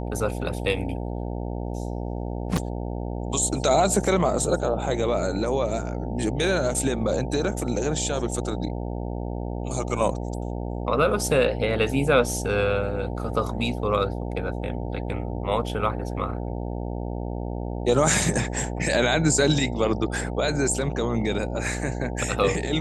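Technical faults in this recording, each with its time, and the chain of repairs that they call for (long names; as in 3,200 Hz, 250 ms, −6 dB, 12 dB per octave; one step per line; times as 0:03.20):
mains buzz 60 Hz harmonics 15 −30 dBFS
0:02.57–0:02.58: drop-out 5.7 ms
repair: hum removal 60 Hz, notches 15
repair the gap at 0:02.57, 5.7 ms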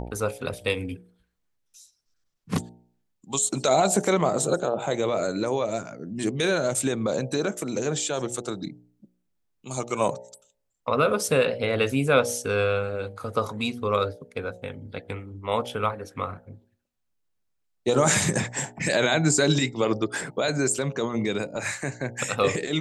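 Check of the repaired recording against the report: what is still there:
none of them is left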